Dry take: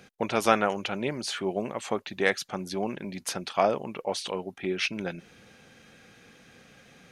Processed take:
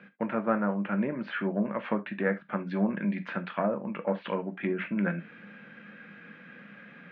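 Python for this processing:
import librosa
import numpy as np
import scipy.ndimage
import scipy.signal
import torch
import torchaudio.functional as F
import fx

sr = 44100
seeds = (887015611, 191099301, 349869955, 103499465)

y = fx.diode_clip(x, sr, knee_db=-16.0)
y = fx.env_lowpass_down(y, sr, base_hz=980.0, full_db=-25.5)
y = fx.rider(y, sr, range_db=3, speed_s=0.5)
y = fx.cabinet(y, sr, low_hz=170.0, low_slope=24, high_hz=2500.0, hz=(200.0, 390.0, 750.0, 1600.0), db=(7, -9, -9, 6))
y = fx.rev_gated(y, sr, seeds[0], gate_ms=100, shape='falling', drr_db=7.5)
y = y * 10.0 ** (1.5 / 20.0)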